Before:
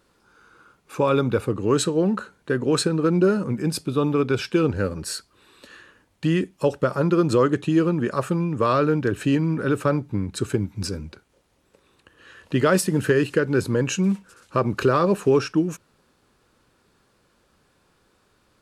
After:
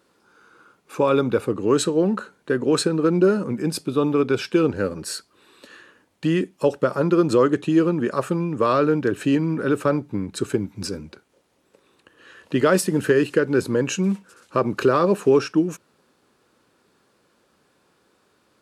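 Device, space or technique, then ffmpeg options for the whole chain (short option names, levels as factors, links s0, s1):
filter by subtraction: -filter_complex "[0:a]asplit=2[s0][s1];[s1]lowpass=300,volume=-1[s2];[s0][s2]amix=inputs=2:normalize=0"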